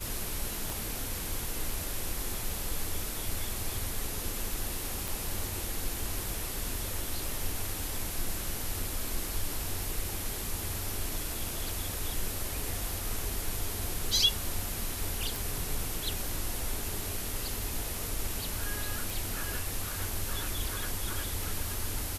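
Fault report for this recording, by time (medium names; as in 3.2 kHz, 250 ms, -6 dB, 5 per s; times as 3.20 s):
0.70 s: pop
5.08 s: pop
15.36 s: pop
19.10 s: pop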